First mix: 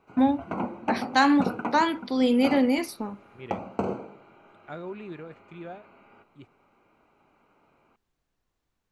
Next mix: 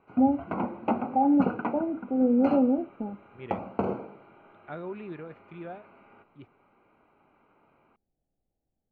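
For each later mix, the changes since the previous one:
first voice: add rippled Chebyshev low-pass 830 Hz, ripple 3 dB; master: add low-pass 2.8 kHz 12 dB/octave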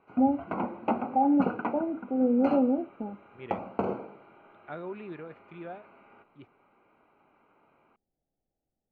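master: add bass shelf 180 Hz -6 dB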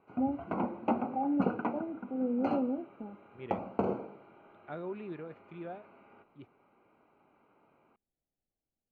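first voice -7.0 dB; master: add peaking EQ 1.8 kHz -4.5 dB 2.5 oct

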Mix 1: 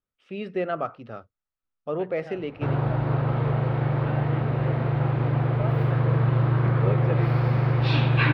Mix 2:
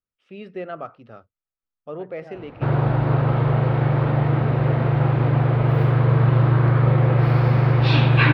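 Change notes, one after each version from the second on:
first voice -4.5 dB; second voice: add low-pass 1.3 kHz 12 dB/octave; background +5.0 dB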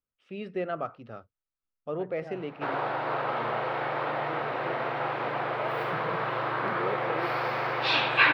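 background: add high-pass 650 Hz 12 dB/octave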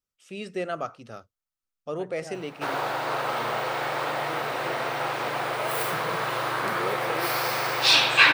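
master: remove distance through air 380 m

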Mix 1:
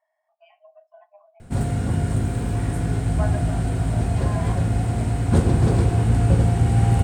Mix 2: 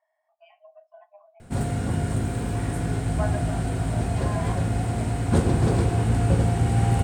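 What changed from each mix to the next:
background: add bass shelf 160 Hz -5.5 dB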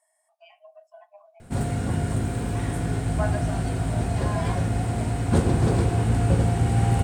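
speech: remove distance through air 320 m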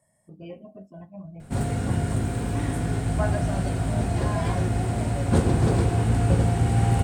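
speech: remove brick-wall FIR high-pass 600 Hz

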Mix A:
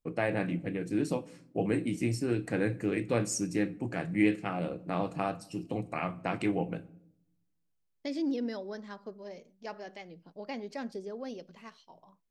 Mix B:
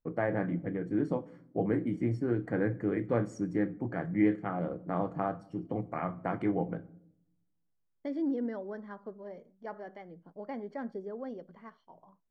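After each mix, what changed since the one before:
master: add Savitzky-Golay filter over 41 samples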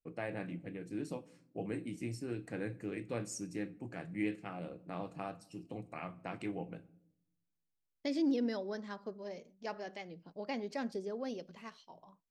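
first voice -10.0 dB; master: remove Savitzky-Golay filter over 41 samples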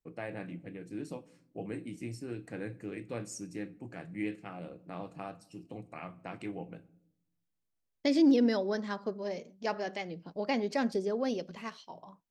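second voice +8.0 dB

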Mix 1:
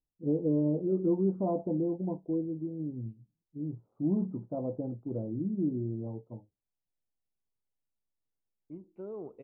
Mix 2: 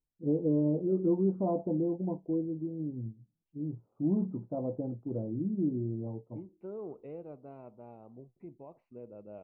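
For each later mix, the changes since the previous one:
second voice: entry -2.35 s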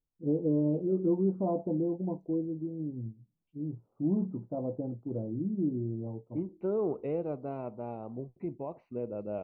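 second voice +11.0 dB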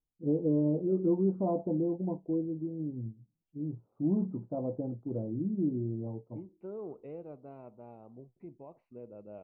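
second voice -11.0 dB

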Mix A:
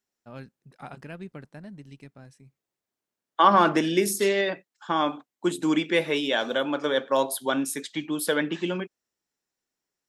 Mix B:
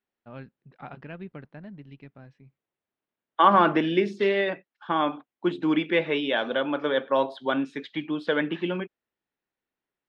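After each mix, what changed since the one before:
master: add low-pass 3.4 kHz 24 dB/octave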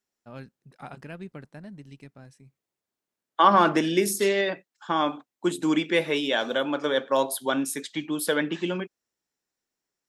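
master: remove low-pass 3.4 kHz 24 dB/octave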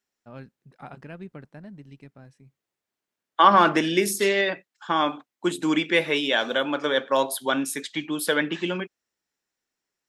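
first voice: add treble shelf 5 kHz -11.5 dB; second voice: add peaking EQ 2.2 kHz +4.5 dB 2.1 oct

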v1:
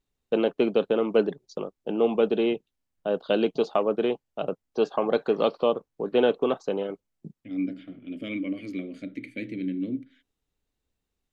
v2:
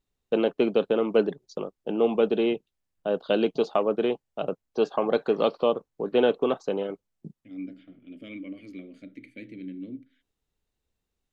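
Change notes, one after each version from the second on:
second voice -8.0 dB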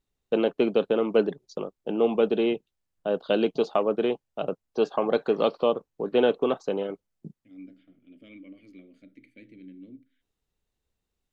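second voice -8.0 dB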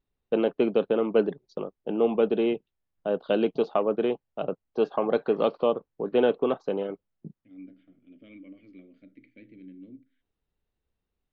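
master: add distance through air 220 m

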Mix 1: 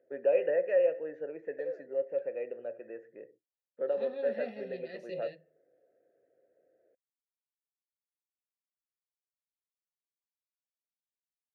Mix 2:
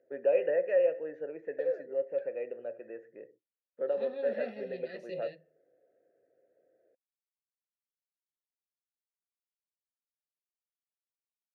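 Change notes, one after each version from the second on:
background +6.0 dB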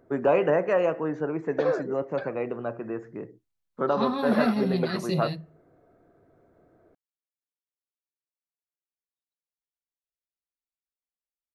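background +4.5 dB; master: remove vowel filter e

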